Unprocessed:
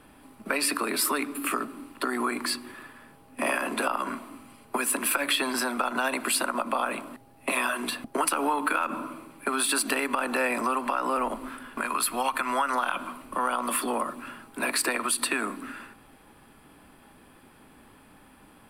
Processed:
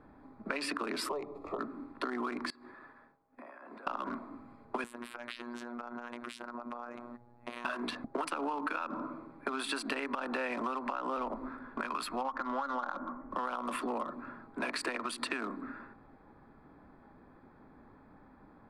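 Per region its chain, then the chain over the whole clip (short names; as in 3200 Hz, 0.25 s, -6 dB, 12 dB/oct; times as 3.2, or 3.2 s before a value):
1.09–1.59 median filter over 5 samples + tilt shelf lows +6 dB, about 1300 Hz + fixed phaser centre 640 Hz, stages 4
2.5–3.87 low shelf 320 Hz -10.5 dB + compressor 10:1, threshold -41 dBFS + expander -50 dBFS
4.84–7.65 robotiser 120 Hz + compressor 5:1, threshold -33 dBFS
12.21–13.31 polynomial smoothing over 41 samples + comb 3.6 ms, depth 40%
whole clip: Wiener smoothing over 15 samples; LPF 5000 Hz 12 dB/oct; compressor, threshold -29 dBFS; gain -2.5 dB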